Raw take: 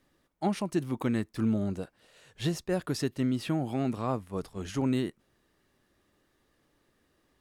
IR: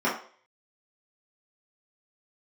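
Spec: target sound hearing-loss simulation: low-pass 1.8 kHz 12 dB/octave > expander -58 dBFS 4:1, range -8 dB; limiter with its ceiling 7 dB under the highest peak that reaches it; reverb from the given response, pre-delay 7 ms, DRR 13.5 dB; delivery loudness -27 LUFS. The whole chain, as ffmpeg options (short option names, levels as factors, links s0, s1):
-filter_complex "[0:a]alimiter=limit=0.075:level=0:latency=1,asplit=2[s0][s1];[1:a]atrim=start_sample=2205,adelay=7[s2];[s1][s2]afir=irnorm=-1:irlink=0,volume=0.0422[s3];[s0][s3]amix=inputs=2:normalize=0,lowpass=1800,agate=range=0.398:threshold=0.00126:ratio=4,volume=2.11"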